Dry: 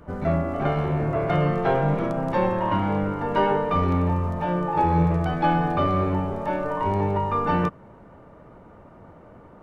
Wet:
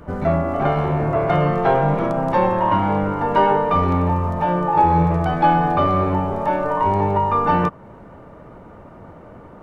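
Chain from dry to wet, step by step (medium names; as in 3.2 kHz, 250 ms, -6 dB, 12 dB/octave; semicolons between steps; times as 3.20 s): dynamic bell 880 Hz, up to +5 dB, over -37 dBFS, Q 1.3; in parallel at -1.5 dB: compression, threshold -30 dBFS, peak gain reduction 16 dB; on the sum: trim +1 dB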